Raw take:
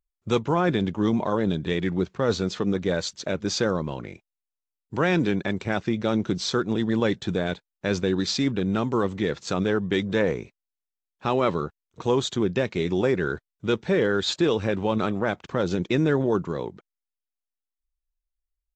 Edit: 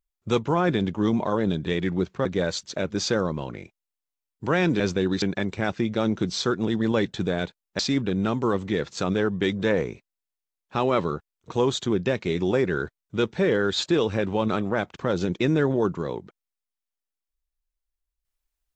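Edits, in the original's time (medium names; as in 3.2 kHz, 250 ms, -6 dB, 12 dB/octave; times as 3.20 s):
2.25–2.75 s: delete
7.87–8.29 s: move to 5.30 s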